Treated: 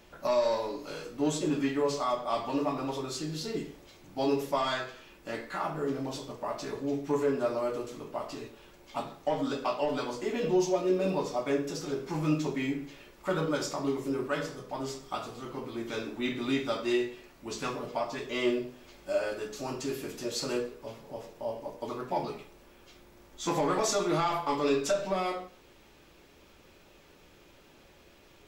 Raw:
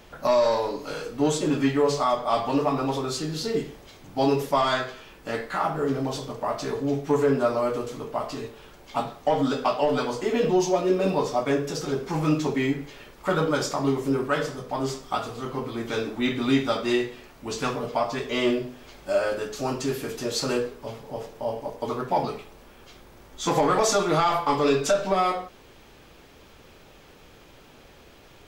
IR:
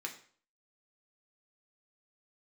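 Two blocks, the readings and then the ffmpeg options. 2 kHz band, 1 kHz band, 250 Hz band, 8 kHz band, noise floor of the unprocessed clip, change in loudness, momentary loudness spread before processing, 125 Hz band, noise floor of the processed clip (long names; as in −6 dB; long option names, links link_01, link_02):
−6.5 dB, −8.0 dB, −6.0 dB, −5.5 dB, −51 dBFS, −6.5 dB, 11 LU, −7.5 dB, −58 dBFS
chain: -filter_complex "[0:a]equalizer=frequency=1700:width_type=o:width=2.8:gain=-3,asplit=2[link_01][link_02];[1:a]atrim=start_sample=2205,asetrate=48510,aresample=44100[link_03];[link_02][link_03]afir=irnorm=-1:irlink=0,volume=0dB[link_04];[link_01][link_04]amix=inputs=2:normalize=0,volume=-9dB"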